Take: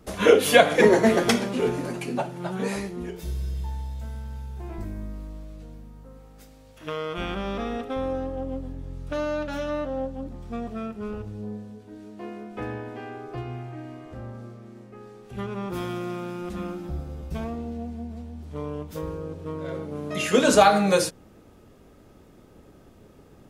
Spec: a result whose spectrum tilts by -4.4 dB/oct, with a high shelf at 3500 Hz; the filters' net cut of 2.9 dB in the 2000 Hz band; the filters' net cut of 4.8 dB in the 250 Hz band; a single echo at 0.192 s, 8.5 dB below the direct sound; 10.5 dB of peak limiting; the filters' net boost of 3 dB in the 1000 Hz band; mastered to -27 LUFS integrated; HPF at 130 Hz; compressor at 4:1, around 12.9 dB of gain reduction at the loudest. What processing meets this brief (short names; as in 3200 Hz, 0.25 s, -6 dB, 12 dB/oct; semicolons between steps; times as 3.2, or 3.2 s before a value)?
HPF 130 Hz; bell 250 Hz -6 dB; bell 1000 Hz +6 dB; bell 2000 Hz -8 dB; high shelf 3500 Hz +6 dB; compressor 4:1, threshold -25 dBFS; limiter -21.5 dBFS; echo 0.192 s -8.5 dB; gain +6.5 dB